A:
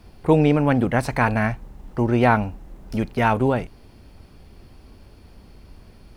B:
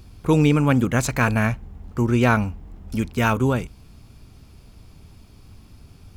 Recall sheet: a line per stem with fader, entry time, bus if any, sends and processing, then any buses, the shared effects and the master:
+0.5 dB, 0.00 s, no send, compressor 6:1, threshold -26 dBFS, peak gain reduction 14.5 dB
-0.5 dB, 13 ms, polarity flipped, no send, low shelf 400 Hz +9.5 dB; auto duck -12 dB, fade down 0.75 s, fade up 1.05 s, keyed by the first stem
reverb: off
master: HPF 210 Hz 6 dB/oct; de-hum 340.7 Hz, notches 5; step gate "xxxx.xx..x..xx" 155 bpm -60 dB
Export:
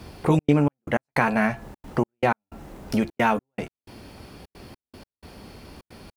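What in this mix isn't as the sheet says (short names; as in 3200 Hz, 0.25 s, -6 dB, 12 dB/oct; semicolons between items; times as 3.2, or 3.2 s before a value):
stem A +0.5 dB -> +9.0 dB; stem B: polarity flipped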